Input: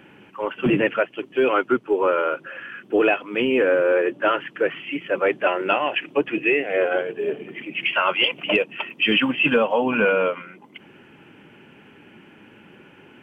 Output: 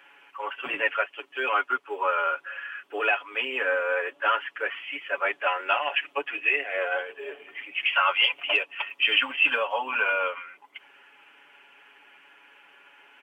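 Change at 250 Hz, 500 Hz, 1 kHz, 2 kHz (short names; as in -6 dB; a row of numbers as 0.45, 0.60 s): -21.5, -11.0, -1.5, -1.0 dB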